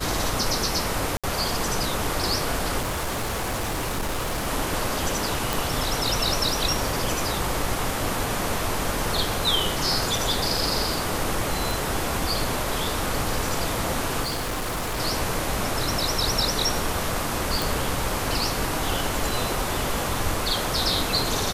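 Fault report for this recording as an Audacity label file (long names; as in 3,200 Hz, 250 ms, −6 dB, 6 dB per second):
1.170000	1.240000	drop-out 66 ms
2.810000	4.480000	clipping −23.5 dBFS
5.530000	5.530000	click
11.710000	11.710000	click
14.230000	15.000000	clipping −24.5 dBFS
17.620000	17.620000	click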